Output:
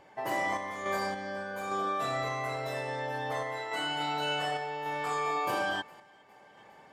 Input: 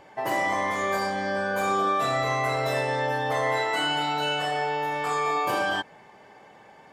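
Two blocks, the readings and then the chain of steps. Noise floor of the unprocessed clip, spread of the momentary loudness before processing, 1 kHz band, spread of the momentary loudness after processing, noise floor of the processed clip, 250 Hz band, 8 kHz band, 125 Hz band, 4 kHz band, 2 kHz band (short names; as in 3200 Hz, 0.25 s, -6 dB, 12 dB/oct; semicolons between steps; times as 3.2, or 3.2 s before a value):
-52 dBFS, 3 LU, -7.0 dB, 5 LU, -57 dBFS, -7.0 dB, -7.0 dB, -7.5 dB, -6.5 dB, -7.0 dB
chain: thinning echo 0.409 s, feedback 55%, level -22.5 dB; random-step tremolo; gain -4.5 dB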